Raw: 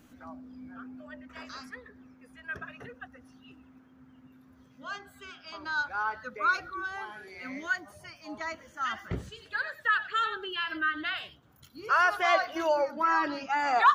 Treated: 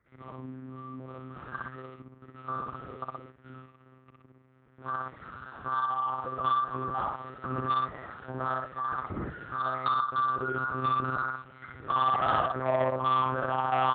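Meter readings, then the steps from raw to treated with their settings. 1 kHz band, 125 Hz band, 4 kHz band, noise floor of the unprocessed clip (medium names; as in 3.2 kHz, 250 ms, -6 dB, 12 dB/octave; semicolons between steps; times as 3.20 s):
+1.5 dB, +9.5 dB, -6.0 dB, -59 dBFS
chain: knee-point frequency compression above 1.1 kHz 4:1; level held to a coarse grid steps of 13 dB; distance through air 220 m; repeats whose band climbs or falls 353 ms, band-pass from 170 Hz, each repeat 1.4 oct, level -12 dB; compression 6:1, threshold -30 dBFS, peak gain reduction 6.5 dB; on a send: loudspeakers at several distances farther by 20 m -1 dB, 40 m -4 dB; on the sum: waveshaping leveller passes 2; hum notches 50/100/150/200/250/300 Hz; monotone LPC vocoder at 8 kHz 130 Hz; high-pass 76 Hz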